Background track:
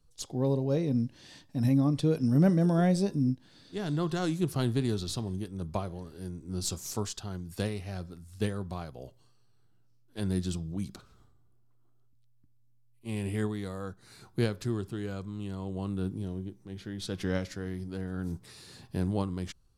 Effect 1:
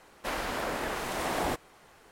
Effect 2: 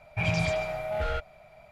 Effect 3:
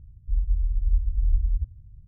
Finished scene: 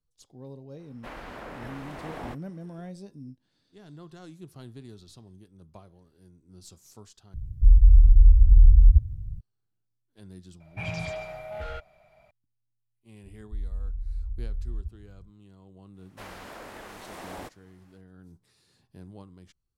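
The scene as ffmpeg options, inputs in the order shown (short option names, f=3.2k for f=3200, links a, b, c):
-filter_complex "[1:a]asplit=2[a][b];[3:a]asplit=2[c][d];[0:a]volume=-16dB[e];[a]bass=f=250:g=5,treble=f=4k:g=-11[f];[c]alimiter=level_in=17.5dB:limit=-1dB:release=50:level=0:latency=1[g];[d]alimiter=limit=-22.5dB:level=0:latency=1:release=71[h];[e]asplit=2[i][j];[i]atrim=end=7.344[k];[g]atrim=end=2.07,asetpts=PTS-STARTPTS,volume=-6dB[l];[j]atrim=start=9.406[m];[f]atrim=end=2.11,asetpts=PTS-STARTPTS,volume=-8.5dB,afade=t=in:d=0.004:c=hsin,afade=t=out:st=2.106:d=0.004:c=hsin,adelay=790[n];[2:a]atrim=end=1.71,asetpts=PTS-STARTPTS,volume=-6.5dB,afade=t=in:d=0.004:c=hsin,afade=t=out:st=1.706:d=0.004:c=hsin,adelay=10600[o];[h]atrim=end=2.07,asetpts=PTS-STARTPTS,volume=-4dB,afade=t=in:d=0.004:c=hsin,afade=t=out:st=2.066:d=0.004:c=hsin,adelay=13240[p];[b]atrim=end=2.11,asetpts=PTS-STARTPTS,volume=-10.5dB,afade=t=in:d=0.1,afade=t=out:st=2.01:d=0.1,adelay=15930[q];[k][l]acrossfade=d=0.004:c1=hsin:c2=hsin[r];[r][m]acrossfade=d=0.004:c1=hsin:c2=hsin[s];[s][n][o][p][q]amix=inputs=5:normalize=0"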